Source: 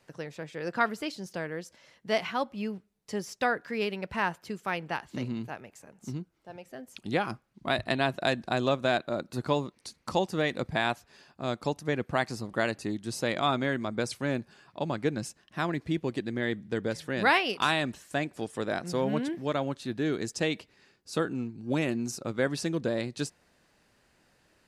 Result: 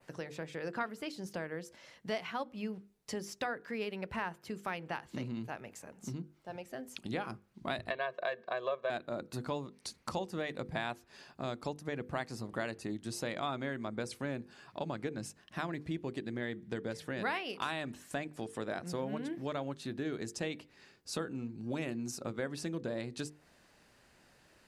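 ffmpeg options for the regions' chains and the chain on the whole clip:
-filter_complex "[0:a]asettb=1/sr,asplit=3[a][b][c];[a]atrim=end=7.904[d];[b]atrim=start=7.9:end=8.9,asetpts=PTS-STARTPTS,afade=t=in:d=0.004:c=qsin,afade=t=out:st=0.996:d=0.004:c=qsin,highpass=400,lowpass=2.8k,aecho=1:1:1.8:0.96,atrim=end_sample=44100[e];[c]atrim=start=8.896[f];[d][e]acrossfade=d=0.004:c1=hsin:c2=qsin[g];[g][f]acrossfade=d=0.004:c1=qsin:c2=hsin,acompressor=threshold=-40dB:ratio=2.5,bandreject=f=50:t=h:w=6,bandreject=f=100:t=h:w=6,bandreject=f=150:t=h:w=6,bandreject=f=200:t=h:w=6,bandreject=f=250:t=h:w=6,bandreject=f=300:t=h:w=6,bandreject=f=350:t=h:w=6,bandreject=f=400:t=h:w=6,bandreject=f=450:t=h:w=6,bandreject=f=500:t=h:w=6,adynamicequalizer=threshold=0.00126:dfrequency=5200:dqfactor=0.79:tfrequency=5200:tqfactor=0.79:attack=5:release=100:ratio=0.375:range=2:mode=cutabove:tftype=bell,volume=2dB"

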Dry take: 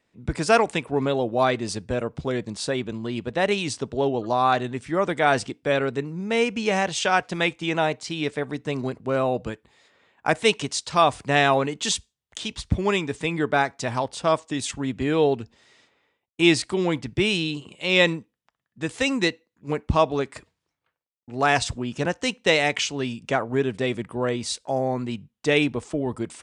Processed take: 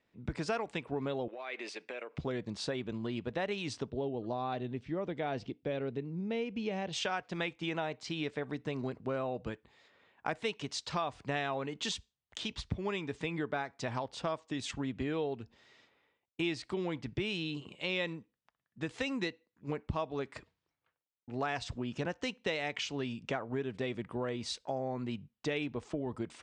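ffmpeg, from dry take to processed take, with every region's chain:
-filter_complex "[0:a]asettb=1/sr,asplit=3[a][b][c];[a]atrim=end=1.284[d];[b]atrim=start=1.28:end=2.18,asetpts=PTS-STARTPTS,afade=t=in:d=0.004:c=qsin,afade=t=out:st=0.896:d=0.004:c=qsin,highpass=f=350:w=0.5412,highpass=f=350:w=1.3066,acompressor=threshold=-34dB:ratio=16:attack=3.2:release=140:knee=1:detection=peak,equalizer=f=2.3k:t=o:w=0.76:g=13[e];[c]atrim=start=2.176[f];[d][e]acrossfade=d=0.004:c1=hsin:c2=qsin[g];[g][f]acrossfade=d=0.004:c1=qsin:c2=hsin,asettb=1/sr,asplit=3[h][i][j];[h]atrim=end=3.904[k];[i]atrim=start=3.9:end=6.93,asetpts=PTS-STARTPTS,afade=t=in:d=0.004:c=qsin,afade=t=out:st=3.026:d=0.004:c=qsin,lowpass=3.7k,equalizer=f=1.4k:t=o:w=1.7:g=-11[l];[j]atrim=start=6.926[m];[k][l]acrossfade=d=0.004:c1=hsin:c2=qsin[n];[n][m]acrossfade=d=0.004:c1=qsin:c2=hsin,lowpass=5k,acompressor=threshold=-28dB:ratio=4,volume=-5dB"

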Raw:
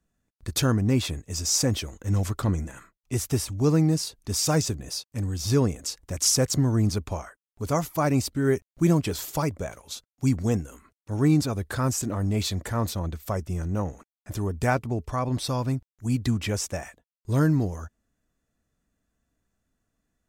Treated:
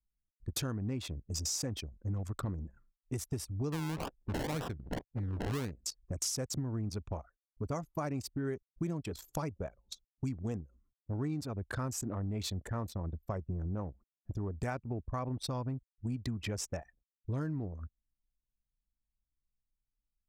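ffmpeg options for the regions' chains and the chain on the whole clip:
-filter_complex "[0:a]asettb=1/sr,asplit=3[a][b][c];[a]atrim=end=3.724[d];[b]atrim=start=3.72:end=5.72,asetpts=PTS-STARTPTS,afade=t=in:d=0.004:c=qsin,afade=t=out:st=1.996:d=0.004:c=qsin,highshelf=f=8k:g=10.5,acrusher=samples=29:mix=1:aa=0.000001:lfo=1:lforange=17.4:lforate=1.9[e];[c]atrim=start=5.716[f];[d][e]acrossfade=d=0.004:c1=hsin:c2=qsin[g];[g][f]acrossfade=d=0.004:c1=qsin:c2=hsin,anlmdn=25.1,acompressor=threshold=-31dB:ratio=6,volume=-2.5dB"

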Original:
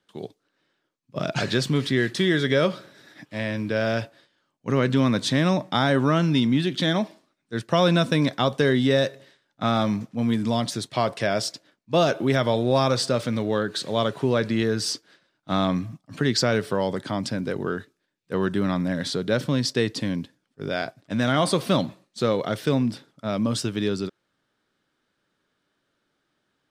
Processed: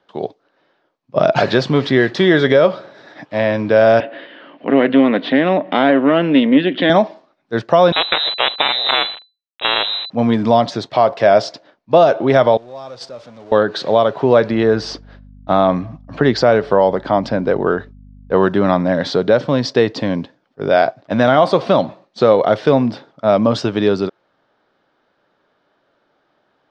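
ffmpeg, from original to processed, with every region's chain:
-filter_complex "[0:a]asettb=1/sr,asplit=3[a][b][c];[a]atrim=end=4.004[d];[b]atrim=start=4:end=6.9,asetpts=PTS-STARTPTS,afade=t=in:d=0.004:c=qsin,afade=t=out:st=2.896:d=0.004:c=qsin,aeval=exprs='(tanh(5.62*val(0)+0.6)-tanh(0.6))/5.62':c=same,highpass=f=180:w=0.5412,highpass=f=180:w=1.3066,equalizer=f=280:t=q:w=4:g=8,equalizer=f=850:t=q:w=4:g=-7,equalizer=f=1.2k:t=q:w=4:g=-4,equalizer=f=1.9k:t=q:w=4:g=7,equalizer=f=2.9k:t=q:w=4:g=8,lowpass=f=3.4k:w=0.5412,lowpass=f=3.4k:w=1.3066,acompressor=mode=upward:threshold=-29dB:ratio=2.5:attack=3.2:release=140:knee=2.83:detection=peak[e];[c]atrim=start=6.896[f];[d][e]acrossfade=d=0.004:c1=hsin:c2=qsin[g];[g][f]acrossfade=d=0.004:c1=qsin:c2=hsin,asettb=1/sr,asplit=3[h][i][j];[h]atrim=end=7.924[k];[i]atrim=start=7.92:end=10.1,asetpts=PTS-STARTPTS,afade=t=in:d=0.004:c=qsin,afade=t=out:st=2.176:d=0.004:c=qsin,aeval=exprs='val(0)+0.5*0.0178*sgn(val(0))':c=same,acrusher=bits=3:dc=4:mix=0:aa=0.000001,lowpass=f=3.4k:t=q:w=0.5098,lowpass=f=3.4k:t=q:w=0.6013,lowpass=f=3.4k:t=q:w=0.9,lowpass=f=3.4k:t=q:w=2.563,afreqshift=-4000[l];[j]atrim=start=10.096[m];[k][l]acrossfade=d=0.004:c1=hsin:c2=qsin[n];[n][m]acrossfade=d=0.004:c1=qsin:c2=hsin,asettb=1/sr,asplit=3[o][p][q];[o]atrim=end=12.574[r];[p]atrim=start=12.57:end=13.52,asetpts=PTS-STARTPTS,afade=t=in:d=0.004:c=qsin,afade=t=out:st=0.946:d=0.004:c=qsin,aeval=exprs='val(0)+0.5*0.0562*sgn(val(0))':c=same,aemphasis=mode=production:type=50fm,agate=range=-26dB:threshold=-13dB:ratio=16:release=100:detection=peak[s];[q]atrim=start=13.516[t];[r][s]acrossfade=d=0.004:c1=hsin:c2=qsin[u];[u][t]acrossfade=d=0.004:c1=qsin:c2=hsin,asettb=1/sr,asplit=3[v][w][x];[v]atrim=end=14.514[y];[w]atrim=start=14.51:end=18.36,asetpts=PTS-STARTPTS,afade=t=in:d=0.004:c=qsin,afade=t=out:st=3.846:d=0.004:c=qsin,highshelf=f=4.1k:g=-6.5,agate=range=-33dB:threshold=-57dB:ratio=3:release=100:detection=peak,aeval=exprs='val(0)+0.00562*(sin(2*PI*50*n/s)+sin(2*PI*2*50*n/s)/2+sin(2*PI*3*50*n/s)/3+sin(2*PI*4*50*n/s)/4+sin(2*PI*5*50*n/s)/5)':c=same[z];[x]atrim=start=18.356[aa];[y][z]acrossfade=d=0.004:c1=hsin:c2=qsin[ab];[ab][aa]acrossfade=d=0.004:c1=qsin:c2=hsin,equalizer=f=710:w=0.75:g=13.5,alimiter=limit=-6dB:level=0:latency=1:release=467,lowpass=f=5.4k:w=0.5412,lowpass=f=5.4k:w=1.3066,volume=4.5dB"

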